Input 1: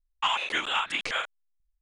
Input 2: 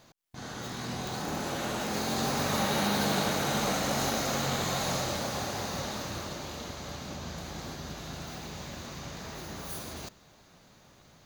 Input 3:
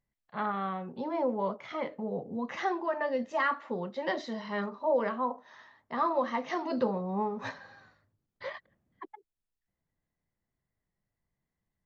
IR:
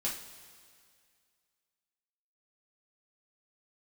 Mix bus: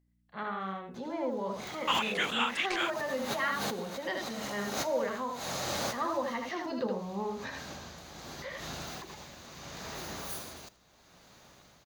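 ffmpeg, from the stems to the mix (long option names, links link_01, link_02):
-filter_complex "[0:a]adelay=1650,volume=-2.5dB[link_01];[1:a]tremolo=f=0.74:d=0.64,adelay=600,volume=2.5dB,asplit=2[link_02][link_03];[link_03]volume=-19.5dB[link_04];[2:a]equalizer=frequency=880:width=0.97:gain=-6,aeval=exprs='val(0)+0.000562*(sin(2*PI*60*n/s)+sin(2*PI*2*60*n/s)/2+sin(2*PI*3*60*n/s)/3+sin(2*PI*4*60*n/s)/4+sin(2*PI*5*60*n/s)/5)':channel_layout=same,volume=0dB,asplit=3[link_05][link_06][link_07];[link_06]volume=-4dB[link_08];[link_07]apad=whole_len=522864[link_09];[link_02][link_09]sidechaincompress=threshold=-49dB:ratio=10:attack=6.1:release=102[link_10];[link_04][link_08]amix=inputs=2:normalize=0,aecho=0:1:78:1[link_11];[link_01][link_10][link_05][link_11]amix=inputs=4:normalize=0,lowshelf=frequency=290:gain=-7"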